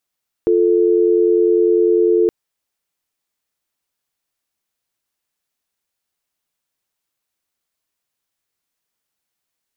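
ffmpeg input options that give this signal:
ffmpeg -f lavfi -i "aevalsrc='0.211*(sin(2*PI*350*t)+sin(2*PI*440*t))':duration=1.82:sample_rate=44100" out.wav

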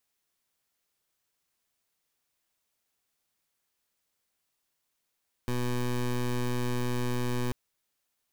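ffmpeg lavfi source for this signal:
ffmpeg -f lavfi -i "aevalsrc='0.0355*(2*lt(mod(123*t,1),0.18)-1)':duration=2.04:sample_rate=44100" out.wav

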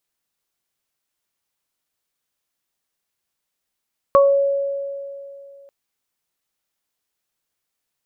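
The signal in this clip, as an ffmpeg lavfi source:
ffmpeg -f lavfi -i "aevalsrc='0.355*pow(10,-3*t/2.66)*sin(2*PI*557*t)+0.335*pow(10,-3*t/0.27)*sin(2*PI*1114*t)':duration=1.54:sample_rate=44100" out.wav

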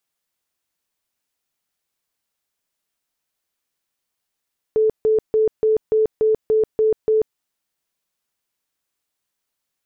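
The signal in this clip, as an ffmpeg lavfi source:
ffmpeg -f lavfi -i "aevalsrc='0.224*sin(2*PI*436*mod(t,0.29))*lt(mod(t,0.29),60/436)':duration=2.61:sample_rate=44100" out.wav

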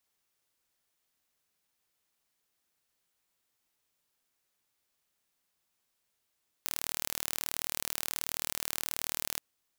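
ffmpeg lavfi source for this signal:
ffmpeg -f lavfi -i "aevalsrc='0.501*eq(mod(n,1142),0)':duration=2.74:sample_rate=44100" out.wav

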